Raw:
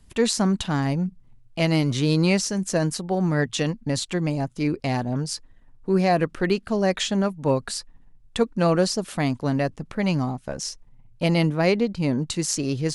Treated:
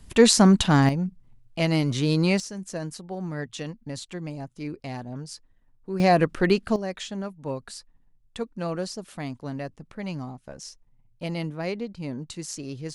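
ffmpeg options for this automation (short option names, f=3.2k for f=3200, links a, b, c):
-af "asetnsamples=n=441:p=0,asendcmd='0.89 volume volume -2dB;2.4 volume volume -10dB;6 volume volume 1.5dB;6.76 volume volume -10dB',volume=5.5dB"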